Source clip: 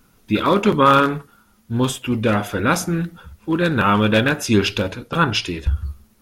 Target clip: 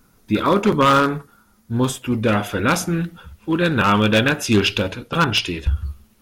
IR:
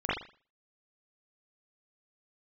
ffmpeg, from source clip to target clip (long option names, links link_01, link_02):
-af "asetnsamples=nb_out_samples=441:pad=0,asendcmd='2.28 equalizer g 4',equalizer=frequency=2900:width_type=o:width=0.59:gain=-5,aeval=exprs='0.422*(abs(mod(val(0)/0.422+3,4)-2)-1)':channel_layout=same"